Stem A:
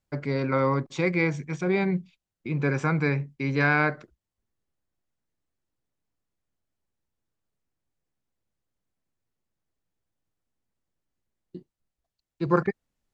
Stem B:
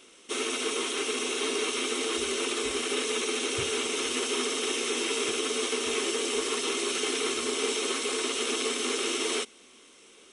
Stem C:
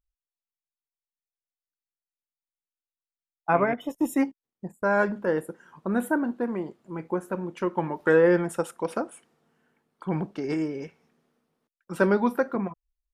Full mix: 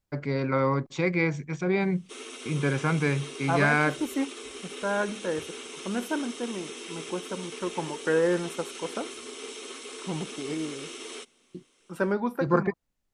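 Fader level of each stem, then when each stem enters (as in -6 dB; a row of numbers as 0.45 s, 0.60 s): -1.0 dB, -11.0 dB, -5.0 dB; 0.00 s, 1.80 s, 0.00 s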